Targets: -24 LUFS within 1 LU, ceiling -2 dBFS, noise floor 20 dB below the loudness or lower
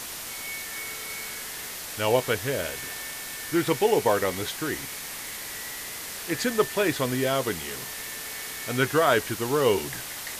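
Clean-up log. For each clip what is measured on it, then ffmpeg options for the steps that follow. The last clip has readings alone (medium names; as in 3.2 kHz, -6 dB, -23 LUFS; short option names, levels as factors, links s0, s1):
noise floor -37 dBFS; noise floor target -48 dBFS; loudness -27.5 LUFS; peak level -7.5 dBFS; loudness target -24.0 LUFS
-> -af "afftdn=nr=11:nf=-37"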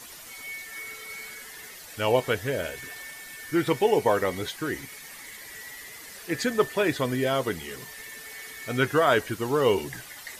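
noise floor -44 dBFS; noise floor target -47 dBFS
-> -af "afftdn=nr=6:nf=-44"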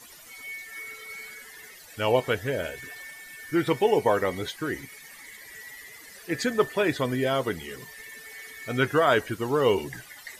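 noise floor -48 dBFS; loudness -26.5 LUFS; peak level -7.5 dBFS; loudness target -24.0 LUFS
-> -af "volume=1.33"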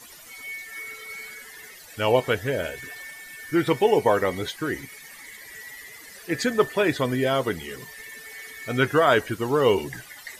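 loudness -24.0 LUFS; peak level -5.0 dBFS; noise floor -45 dBFS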